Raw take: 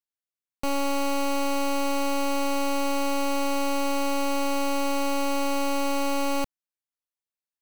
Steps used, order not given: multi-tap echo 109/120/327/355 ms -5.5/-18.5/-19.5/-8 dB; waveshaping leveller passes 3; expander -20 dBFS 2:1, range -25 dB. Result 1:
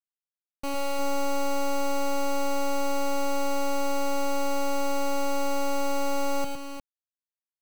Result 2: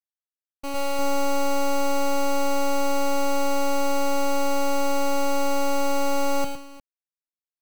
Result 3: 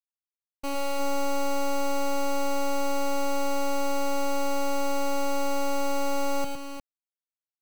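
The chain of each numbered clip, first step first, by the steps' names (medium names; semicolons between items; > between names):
expander > waveshaping leveller > multi-tap echo; waveshaping leveller > multi-tap echo > expander; waveshaping leveller > expander > multi-tap echo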